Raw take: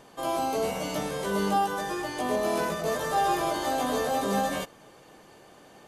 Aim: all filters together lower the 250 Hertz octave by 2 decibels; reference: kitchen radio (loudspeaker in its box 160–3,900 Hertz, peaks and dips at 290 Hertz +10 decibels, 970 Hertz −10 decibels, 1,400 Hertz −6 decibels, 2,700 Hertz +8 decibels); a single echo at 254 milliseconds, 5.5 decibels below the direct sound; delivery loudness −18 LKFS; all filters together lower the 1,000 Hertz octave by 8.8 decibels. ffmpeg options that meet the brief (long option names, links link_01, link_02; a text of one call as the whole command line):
ffmpeg -i in.wav -af "highpass=160,equalizer=frequency=290:width_type=q:width=4:gain=10,equalizer=frequency=970:width_type=q:width=4:gain=-10,equalizer=frequency=1400:width_type=q:width=4:gain=-6,equalizer=frequency=2700:width_type=q:width=4:gain=8,lowpass=frequency=3900:width=0.5412,lowpass=frequency=3900:width=1.3066,equalizer=frequency=250:width_type=o:gain=-7.5,equalizer=frequency=1000:width_type=o:gain=-7,aecho=1:1:254:0.531,volume=13.5dB" out.wav